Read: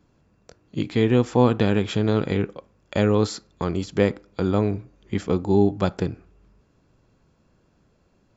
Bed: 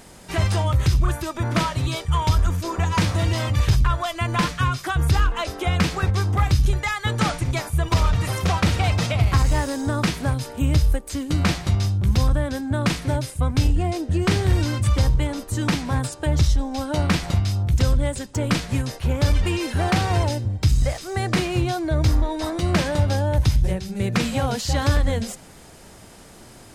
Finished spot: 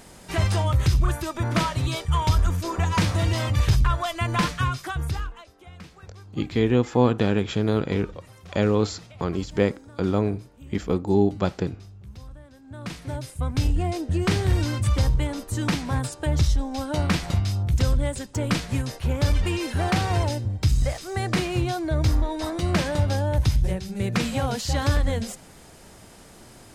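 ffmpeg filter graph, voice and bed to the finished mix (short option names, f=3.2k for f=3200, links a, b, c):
-filter_complex "[0:a]adelay=5600,volume=-1.5dB[a];[1:a]volume=19.5dB,afade=t=out:st=4.49:d=0.97:silence=0.0794328,afade=t=in:st=12.6:d=1.22:silence=0.0891251[b];[a][b]amix=inputs=2:normalize=0"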